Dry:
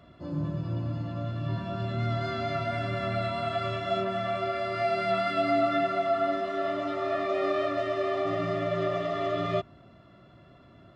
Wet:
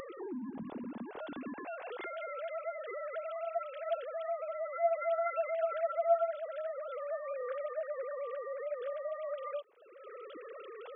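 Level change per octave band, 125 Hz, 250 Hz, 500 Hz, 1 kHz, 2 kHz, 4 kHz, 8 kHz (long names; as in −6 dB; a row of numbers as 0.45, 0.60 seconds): below −30 dB, below −10 dB, −6.0 dB, −8.5 dB, −11.0 dB, below −15 dB, can't be measured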